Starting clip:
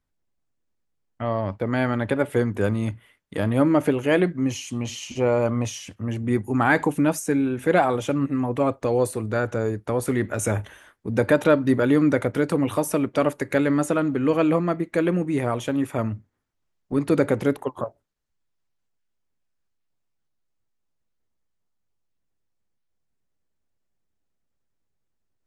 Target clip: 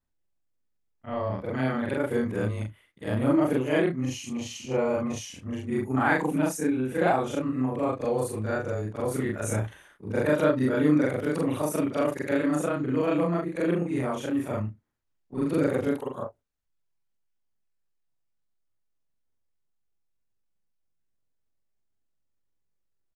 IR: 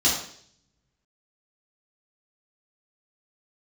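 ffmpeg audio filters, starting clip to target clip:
-af "afftfilt=real='re':imag='-im':win_size=4096:overlap=0.75,atempo=1.1"

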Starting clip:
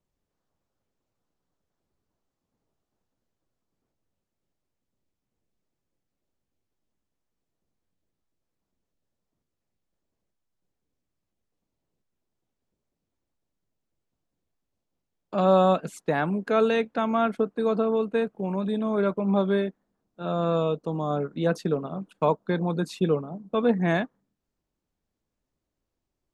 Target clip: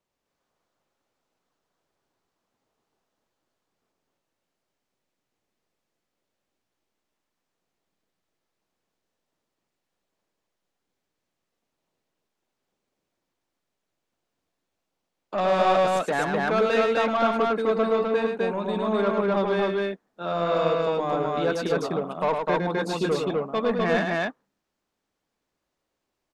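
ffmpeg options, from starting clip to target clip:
ffmpeg -i in.wav -filter_complex "[0:a]asplit=2[link_01][link_02];[link_02]highpass=frequency=720:poles=1,volume=17dB,asoftclip=type=tanh:threshold=-9.5dB[link_03];[link_01][link_03]amix=inputs=2:normalize=0,lowpass=frequency=4700:poles=1,volume=-6dB,aecho=1:1:105|253.6:0.562|0.891,volume=-5.5dB" out.wav

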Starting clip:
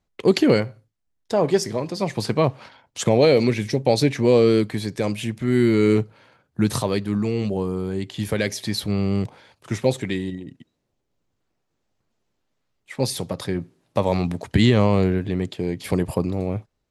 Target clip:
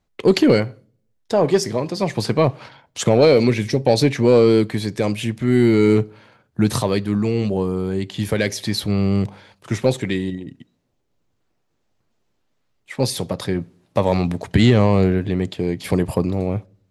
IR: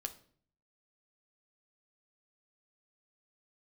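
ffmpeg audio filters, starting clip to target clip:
-filter_complex "[0:a]asoftclip=type=tanh:threshold=-6dB,asplit=2[link_01][link_02];[1:a]atrim=start_sample=2205,lowpass=7500[link_03];[link_02][link_03]afir=irnorm=-1:irlink=0,volume=-12dB[link_04];[link_01][link_04]amix=inputs=2:normalize=0,volume=2dB"

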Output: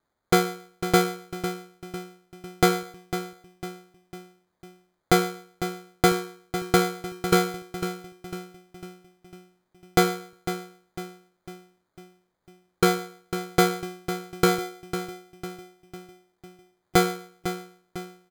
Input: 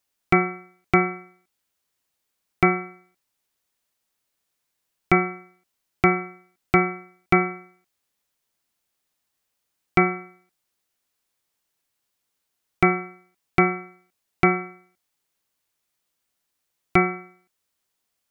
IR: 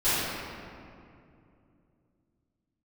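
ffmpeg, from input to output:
-filter_complex "[0:a]asplit=2[link_01][link_02];[link_02]adelay=501,lowpass=frequency=1500:poles=1,volume=-9dB,asplit=2[link_03][link_04];[link_04]adelay=501,lowpass=frequency=1500:poles=1,volume=0.54,asplit=2[link_05][link_06];[link_06]adelay=501,lowpass=frequency=1500:poles=1,volume=0.54,asplit=2[link_07][link_08];[link_08]adelay=501,lowpass=frequency=1500:poles=1,volume=0.54,asplit=2[link_09][link_10];[link_10]adelay=501,lowpass=frequency=1500:poles=1,volume=0.54,asplit=2[link_11][link_12];[link_12]adelay=501,lowpass=frequency=1500:poles=1,volume=0.54[link_13];[link_01][link_03][link_05][link_07][link_09][link_11][link_13]amix=inputs=7:normalize=0,acrusher=samples=16:mix=1:aa=0.000001,volume=-1.5dB"

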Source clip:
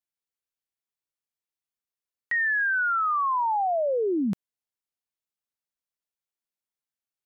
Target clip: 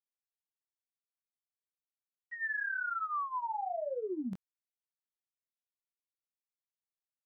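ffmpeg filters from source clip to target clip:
ffmpeg -i in.wav -af "agate=range=-33dB:threshold=-17dB:ratio=3:detection=peak,flanger=delay=18.5:depth=3.9:speed=1,volume=2.5dB" out.wav

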